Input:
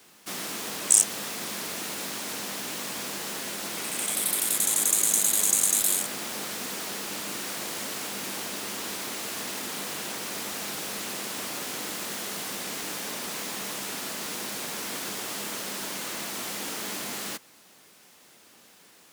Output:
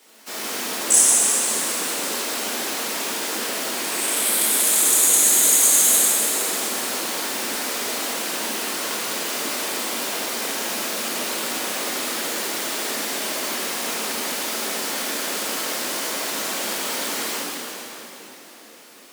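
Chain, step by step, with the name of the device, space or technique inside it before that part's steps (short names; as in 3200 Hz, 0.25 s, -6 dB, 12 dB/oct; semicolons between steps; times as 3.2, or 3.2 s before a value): whispering ghost (whisperiser; HPF 230 Hz 24 dB/oct; reverb RT60 3.9 s, pre-delay 8 ms, DRR -7.5 dB)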